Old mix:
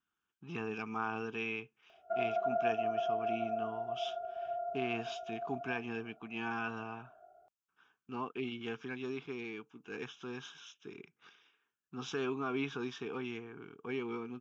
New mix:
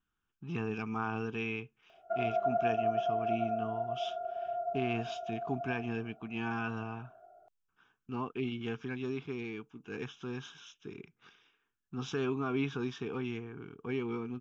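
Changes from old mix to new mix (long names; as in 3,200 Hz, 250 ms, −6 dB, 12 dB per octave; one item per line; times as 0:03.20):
speech: remove high-pass filter 330 Hz 6 dB per octave
reverb: on, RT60 0.65 s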